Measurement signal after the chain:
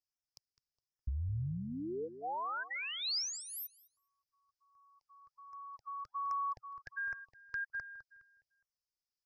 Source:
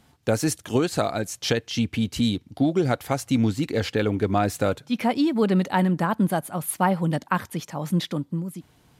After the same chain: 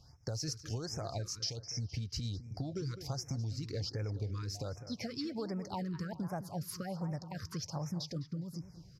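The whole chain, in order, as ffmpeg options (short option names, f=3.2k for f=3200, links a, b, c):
-filter_complex "[0:a]firequalizer=gain_entry='entry(120,0);entry(210,-17);entry(530,-11);entry(3400,-18);entry(5000,5);entry(8800,-23)':delay=0.05:min_phase=1,acrossover=split=3100[a][b];[a]alimiter=level_in=2.5dB:limit=-24dB:level=0:latency=1:release=139,volume=-2.5dB[c];[c][b]amix=inputs=2:normalize=0,acompressor=threshold=-39dB:ratio=6,aexciter=amount=1.3:drive=7.1:freq=11k,asplit=2[d][e];[e]adelay=207,lowpass=f=3.1k:p=1,volume=-11.5dB,asplit=2[f][g];[g]adelay=207,lowpass=f=3.1k:p=1,volume=0.37,asplit=2[h][i];[i]adelay=207,lowpass=f=3.1k:p=1,volume=0.37,asplit=2[j][k];[k]adelay=207,lowpass=f=3.1k:p=1,volume=0.37[l];[d][f][h][j][l]amix=inputs=5:normalize=0,afftfilt=real='re*(1-between(b*sr/1024,650*pow(3700/650,0.5+0.5*sin(2*PI*1.3*pts/sr))/1.41,650*pow(3700/650,0.5+0.5*sin(2*PI*1.3*pts/sr))*1.41))':imag='im*(1-between(b*sr/1024,650*pow(3700/650,0.5+0.5*sin(2*PI*1.3*pts/sr))/1.41,650*pow(3700/650,0.5+0.5*sin(2*PI*1.3*pts/sr))*1.41))':win_size=1024:overlap=0.75,volume=3.5dB"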